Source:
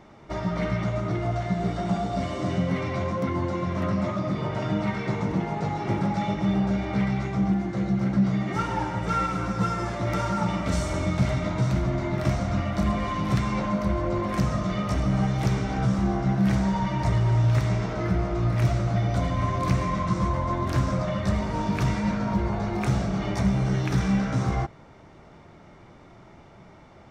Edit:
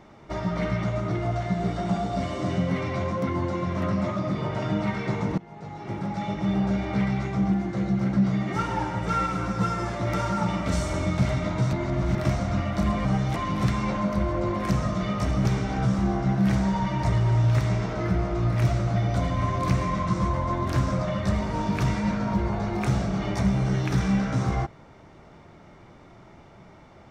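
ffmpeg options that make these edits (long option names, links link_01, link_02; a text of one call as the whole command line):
ffmpeg -i in.wav -filter_complex "[0:a]asplit=7[link_01][link_02][link_03][link_04][link_05][link_06][link_07];[link_01]atrim=end=5.38,asetpts=PTS-STARTPTS,afade=type=out:start_time=5.376:duration=0.004:curve=hsin:silence=0.0891251[link_08];[link_02]atrim=start=5.38:end=11.732,asetpts=PTS-STARTPTS,afade=type=in:duration=1.3:silence=0.0891251[link_09];[link_03]atrim=start=11.728:end=12.152,asetpts=PTS-STARTPTS,areverse[link_10];[link_04]atrim=start=12.148:end=13.052[link_11];[link_05]atrim=start=15.138:end=15.452[link_12];[link_06]atrim=start=13.048:end=15.142[link_13];[link_07]atrim=start=15.448[link_14];[link_08][link_09]concat=n=2:v=0:a=1[link_15];[link_15][link_10]acrossfade=duration=0.004:curve1=hsin:curve2=hsin[link_16];[link_16][link_11]acrossfade=duration=0.004:curve1=hsin:curve2=hsin[link_17];[link_17][link_12]acrossfade=duration=0.004:curve1=hsin:curve2=hsin[link_18];[link_18][link_13]acrossfade=duration=0.004:curve1=hsin:curve2=hsin[link_19];[link_19][link_14]acrossfade=duration=0.004:curve1=hsin:curve2=hsin" out.wav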